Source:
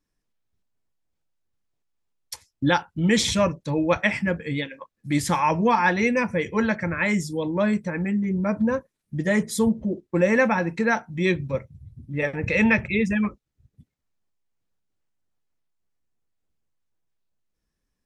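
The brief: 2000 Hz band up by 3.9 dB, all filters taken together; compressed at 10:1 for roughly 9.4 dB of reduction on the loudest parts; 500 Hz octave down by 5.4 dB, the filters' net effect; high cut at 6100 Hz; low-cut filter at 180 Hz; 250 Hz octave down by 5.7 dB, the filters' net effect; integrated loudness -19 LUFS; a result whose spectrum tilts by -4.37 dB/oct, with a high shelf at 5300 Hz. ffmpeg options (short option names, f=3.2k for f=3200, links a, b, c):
-af "highpass=180,lowpass=6.1k,equalizer=f=250:t=o:g=-4,equalizer=f=500:t=o:g=-5.5,equalizer=f=2k:t=o:g=4.5,highshelf=f=5.3k:g=3.5,acompressor=threshold=-23dB:ratio=10,volume=9.5dB"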